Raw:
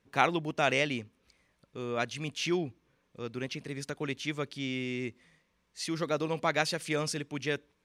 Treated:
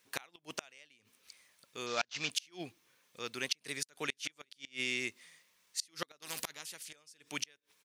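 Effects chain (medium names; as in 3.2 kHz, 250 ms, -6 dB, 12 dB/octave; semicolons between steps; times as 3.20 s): 1.86–2.30 s: CVSD coder 32 kbps; tilt EQ +4.5 dB/octave; 3.76–4.31 s: echo throw 360 ms, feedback 10%, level -15 dB; inverted gate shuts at -19 dBFS, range -33 dB; 6.22–6.93 s: spectrum-flattening compressor 4:1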